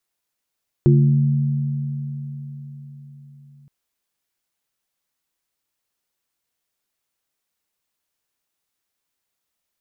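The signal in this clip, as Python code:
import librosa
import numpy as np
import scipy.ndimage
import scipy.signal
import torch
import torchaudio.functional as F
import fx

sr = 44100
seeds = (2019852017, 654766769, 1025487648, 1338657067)

y = fx.additive_free(sr, length_s=2.82, hz=142.0, level_db=-10.0, upper_db=(-9, -4.0), decay_s=4.65, upper_decays_s=(4.03, 0.57), upper_hz=(222.0, 350.0))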